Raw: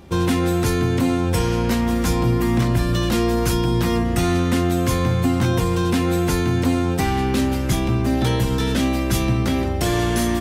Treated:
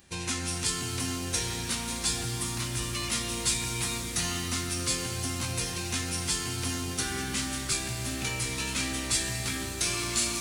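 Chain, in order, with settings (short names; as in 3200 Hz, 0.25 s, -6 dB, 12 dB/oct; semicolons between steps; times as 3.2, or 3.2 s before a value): pre-emphasis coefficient 0.9; formant shift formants -6 st; shimmer reverb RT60 3.8 s, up +7 st, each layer -8 dB, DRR 4 dB; gain +1.5 dB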